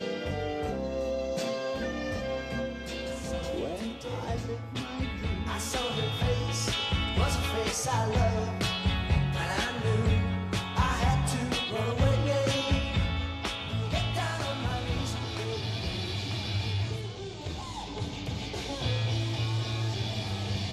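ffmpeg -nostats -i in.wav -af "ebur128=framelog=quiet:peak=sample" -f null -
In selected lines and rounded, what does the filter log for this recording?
Integrated loudness:
  I:         -30.6 LUFS
  Threshold: -40.6 LUFS
Loudness range:
  LRA:         5.6 LU
  Threshold: -50.4 LUFS
  LRA low:   -33.8 LUFS
  LRA high:  -28.2 LUFS
Sample peak:
  Peak:      -13.0 dBFS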